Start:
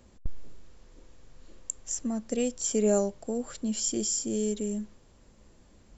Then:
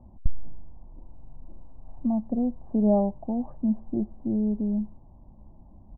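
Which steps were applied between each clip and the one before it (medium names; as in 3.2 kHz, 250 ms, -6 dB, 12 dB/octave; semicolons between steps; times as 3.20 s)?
steep low-pass 900 Hz 36 dB/octave; comb 1.1 ms, depth 78%; trim +4 dB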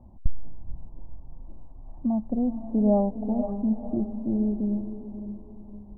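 echo that smears into a reverb 480 ms, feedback 41%, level -9 dB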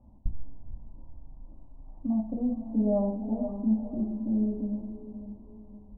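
distance through air 300 m; reverberation RT60 0.50 s, pre-delay 3 ms, DRR -1 dB; trim -8 dB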